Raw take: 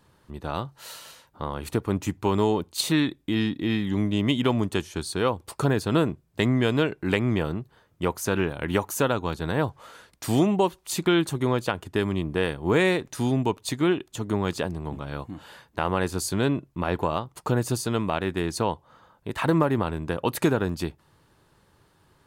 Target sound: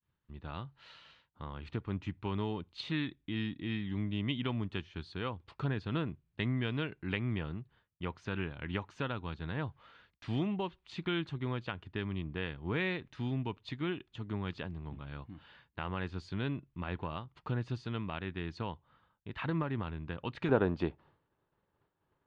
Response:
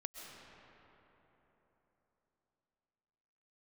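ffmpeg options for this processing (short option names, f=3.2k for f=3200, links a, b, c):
-af "lowpass=f=3.4k:w=0.5412,lowpass=f=3.4k:w=1.3066,agate=range=-33dB:threshold=-51dB:ratio=3:detection=peak,asetnsamples=n=441:p=0,asendcmd='20.49 equalizer g 5',equalizer=f=560:t=o:w=2.5:g=-10.5,volume=-6.5dB"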